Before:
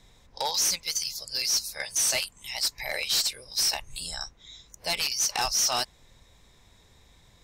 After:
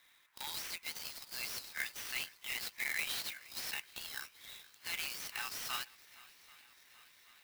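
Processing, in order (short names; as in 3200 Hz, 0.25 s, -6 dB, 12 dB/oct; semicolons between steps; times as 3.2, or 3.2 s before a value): HPF 1400 Hz 24 dB/oct; high shelf 9100 Hz +5.5 dB; limiter -23 dBFS, peak gain reduction 10 dB; air absorption 290 m; swung echo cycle 0.782 s, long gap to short 1.5:1, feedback 64%, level -22 dB; clock jitter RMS 0.033 ms; gain +3 dB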